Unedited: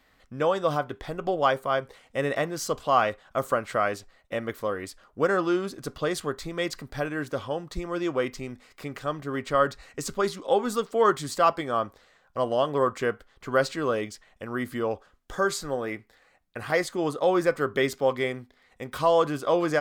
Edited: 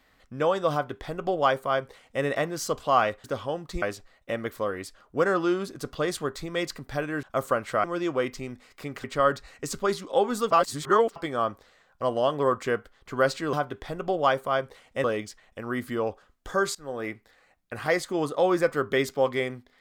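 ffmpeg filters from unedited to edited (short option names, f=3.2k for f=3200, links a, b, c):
-filter_complex "[0:a]asplit=11[a][b][c][d][e][f][g][h][i][j][k];[a]atrim=end=3.242[l];[b]atrim=start=7.258:end=7.842[m];[c]atrim=start=3.848:end=7.262[n];[d]atrim=start=3.238:end=3.852[o];[e]atrim=start=7.838:end=9.042[p];[f]atrim=start=9.388:end=10.862[q];[g]atrim=start=10.858:end=11.512,asetpts=PTS-STARTPTS,areverse[r];[h]atrim=start=11.508:end=13.882[s];[i]atrim=start=0.718:end=2.232[t];[j]atrim=start=13.878:end=15.59,asetpts=PTS-STARTPTS,afade=t=out:st=1.708:d=0.004:c=hsin:silence=0.0668344[u];[k]atrim=start=15.59,asetpts=PTS-STARTPTS,afade=t=in:d=0.31:silence=0.0668344[v];[l][m]acrossfade=d=0.004:c1=hsin:c2=hsin[w];[w][n]acrossfade=d=0.004:c1=hsin:c2=hsin[x];[x][o]acrossfade=d=0.004:c1=hsin:c2=hsin[y];[y][p]acrossfade=d=0.004:c1=hsin:c2=hsin[z];[z][q]acrossfade=d=0.004:c1=hsin:c2=hsin[aa];[aa][r]acrossfade=d=0.004:c1=hsin:c2=hsin[ab];[ab][s]acrossfade=d=0.004:c1=hsin:c2=hsin[ac];[ac][t]acrossfade=d=0.004:c1=hsin:c2=hsin[ad];[u][v]concat=n=2:v=0:a=1[ae];[ad][ae]acrossfade=d=0.004:c1=hsin:c2=hsin"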